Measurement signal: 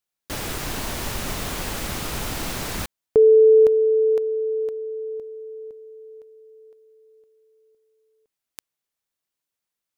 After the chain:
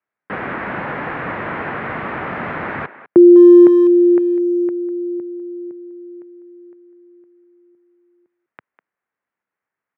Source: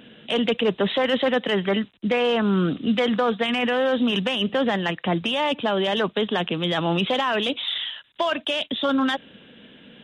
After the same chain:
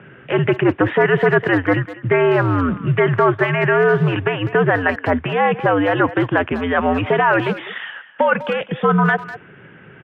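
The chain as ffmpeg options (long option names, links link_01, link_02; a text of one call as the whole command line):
ffmpeg -i in.wav -filter_complex "[0:a]crystalizer=i=6:c=0,highpass=frequency=220:width_type=q:width=0.5412,highpass=frequency=220:width_type=q:width=1.307,lowpass=frequency=2000:width_type=q:width=0.5176,lowpass=frequency=2000:width_type=q:width=0.7071,lowpass=frequency=2000:width_type=q:width=1.932,afreqshift=-89,asplit=2[link_01][link_02];[link_02]adelay=200,highpass=300,lowpass=3400,asoftclip=type=hard:threshold=-16.5dB,volume=-14dB[link_03];[link_01][link_03]amix=inputs=2:normalize=0,volume=6dB" out.wav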